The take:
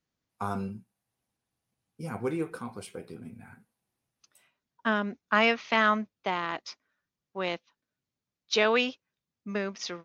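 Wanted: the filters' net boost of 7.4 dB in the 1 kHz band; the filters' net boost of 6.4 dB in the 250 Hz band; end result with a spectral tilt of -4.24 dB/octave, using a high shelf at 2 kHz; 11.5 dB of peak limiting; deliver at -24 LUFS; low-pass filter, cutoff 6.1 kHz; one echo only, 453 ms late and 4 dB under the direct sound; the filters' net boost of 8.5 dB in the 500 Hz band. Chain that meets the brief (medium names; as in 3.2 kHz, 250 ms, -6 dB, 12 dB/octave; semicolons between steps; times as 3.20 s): low-pass 6.1 kHz; peaking EQ 250 Hz +6 dB; peaking EQ 500 Hz +7 dB; peaking EQ 1 kHz +8 dB; treble shelf 2 kHz -3.5 dB; peak limiter -16.5 dBFS; delay 453 ms -4 dB; trim +5.5 dB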